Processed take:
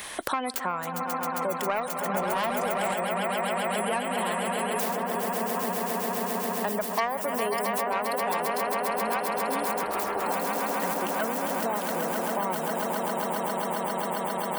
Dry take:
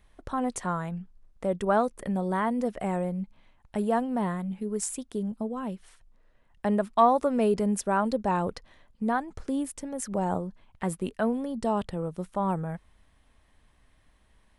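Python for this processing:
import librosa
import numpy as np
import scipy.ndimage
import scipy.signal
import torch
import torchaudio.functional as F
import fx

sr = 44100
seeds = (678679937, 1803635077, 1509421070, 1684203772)

p1 = fx.tracing_dist(x, sr, depth_ms=0.35)
p2 = p1 + fx.echo_swell(p1, sr, ms=134, loudest=8, wet_db=-8.5, dry=0)
p3 = fx.ring_mod(p2, sr, carrier_hz=200.0, at=(9.83, 10.26))
p4 = fx.highpass(p3, sr, hz=860.0, slope=6)
p5 = fx.high_shelf(p4, sr, hz=5700.0, db=10.0)
p6 = fx.spec_gate(p5, sr, threshold_db=-30, keep='strong')
p7 = 10.0 ** (-26.5 / 20.0) * np.tanh(p6 / 10.0 ** (-26.5 / 20.0))
p8 = p6 + F.gain(torch.from_numpy(p7), -8.5).numpy()
p9 = fx.leveller(p8, sr, passes=1, at=(2.14, 2.94))
p10 = fx.band_squash(p9, sr, depth_pct=100)
y = F.gain(torch.from_numpy(p10), -2.0).numpy()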